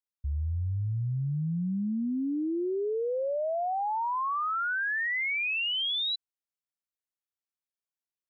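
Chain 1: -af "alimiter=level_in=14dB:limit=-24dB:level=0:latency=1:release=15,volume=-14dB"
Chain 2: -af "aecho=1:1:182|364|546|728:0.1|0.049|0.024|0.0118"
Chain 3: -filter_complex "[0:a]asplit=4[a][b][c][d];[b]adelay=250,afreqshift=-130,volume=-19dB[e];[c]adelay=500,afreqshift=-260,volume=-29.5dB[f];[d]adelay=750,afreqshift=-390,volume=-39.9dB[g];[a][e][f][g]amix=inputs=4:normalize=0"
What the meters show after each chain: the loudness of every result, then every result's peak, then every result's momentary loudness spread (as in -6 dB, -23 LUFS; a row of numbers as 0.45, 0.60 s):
-41.0, -29.5, -29.5 LUFS; -38.0, -25.5, -25.5 dBFS; 5, 5, 5 LU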